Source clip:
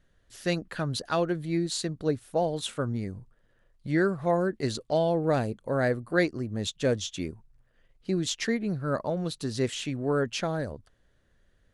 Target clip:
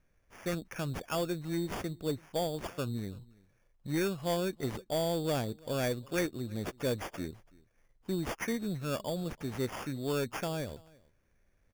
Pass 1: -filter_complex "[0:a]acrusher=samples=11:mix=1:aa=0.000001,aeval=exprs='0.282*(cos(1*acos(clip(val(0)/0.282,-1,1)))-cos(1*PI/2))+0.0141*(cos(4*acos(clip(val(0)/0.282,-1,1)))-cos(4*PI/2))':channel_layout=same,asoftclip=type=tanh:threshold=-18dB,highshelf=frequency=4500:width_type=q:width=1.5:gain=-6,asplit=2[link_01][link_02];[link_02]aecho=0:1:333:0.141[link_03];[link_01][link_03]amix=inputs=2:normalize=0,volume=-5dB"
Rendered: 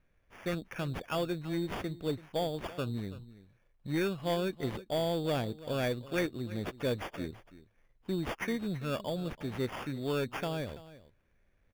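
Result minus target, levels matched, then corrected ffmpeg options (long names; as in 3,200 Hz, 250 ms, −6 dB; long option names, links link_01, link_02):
8,000 Hz band −7.0 dB; echo-to-direct +7.5 dB
-filter_complex "[0:a]acrusher=samples=11:mix=1:aa=0.000001,aeval=exprs='0.282*(cos(1*acos(clip(val(0)/0.282,-1,1)))-cos(1*PI/2))+0.0141*(cos(4*acos(clip(val(0)/0.282,-1,1)))-cos(4*PI/2))':channel_layout=same,asoftclip=type=tanh:threshold=-18dB,asplit=2[link_01][link_02];[link_02]aecho=0:1:333:0.0596[link_03];[link_01][link_03]amix=inputs=2:normalize=0,volume=-5dB"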